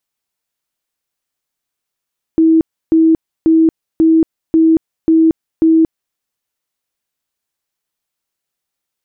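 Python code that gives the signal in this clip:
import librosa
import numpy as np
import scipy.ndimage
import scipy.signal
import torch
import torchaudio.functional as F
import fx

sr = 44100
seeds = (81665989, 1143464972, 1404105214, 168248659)

y = fx.tone_burst(sr, hz=323.0, cycles=74, every_s=0.54, bursts=7, level_db=-6.0)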